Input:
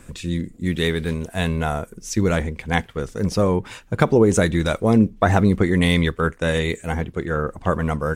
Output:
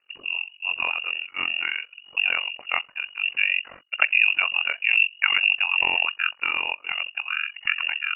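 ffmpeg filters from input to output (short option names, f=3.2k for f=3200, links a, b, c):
-af "agate=range=-18dB:threshold=-39dB:ratio=16:detection=peak,lowpass=f=2.5k:t=q:w=0.5098,lowpass=f=2.5k:t=q:w=0.6013,lowpass=f=2.5k:t=q:w=0.9,lowpass=f=2.5k:t=q:w=2.563,afreqshift=-2900,tremolo=f=46:d=0.919,volume=-1dB"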